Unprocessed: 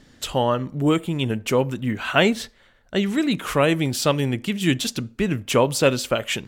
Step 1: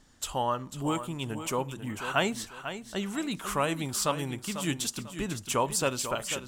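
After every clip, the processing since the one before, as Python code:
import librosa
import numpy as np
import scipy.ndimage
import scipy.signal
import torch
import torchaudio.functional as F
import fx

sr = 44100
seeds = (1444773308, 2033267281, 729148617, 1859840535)

y = fx.graphic_eq(x, sr, hz=(125, 250, 500, 1000, 2000, 4000, 8000), db=(-6, -5, -7, 4, -6, -4, 5))
y = fx.echo_feedback(y, sr, ms=495, feedback_pct=29, wet_db=-10.5)
y = y * librosa.db_to_amplitude(-5.0)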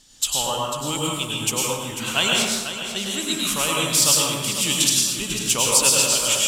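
y = fx.band_shelf(x, sr, hz=6000.0, db=14.5, octaves=2.8)
y = fx.rev_plate(y, sr, seeds[0], rt60_s=1.2, hf_ratio=0.6, predelay_ms=85, drr_db=-3.0)
y = y * librosa.db_to_amplitude(-1.5)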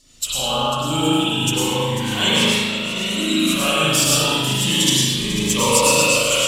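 y = fx.spec_quant(x, sr, step_db=15)
y = fx.rev_spring(y, sr, rt60_s=1.2, pass_ms=(38,), chirp_ms=35, drr_db=-9.0)
y = fx.notch_cascade(y, sr, direction='rising', hz=0.33)
y = y * librosa.db_to_amplitude(-1.0)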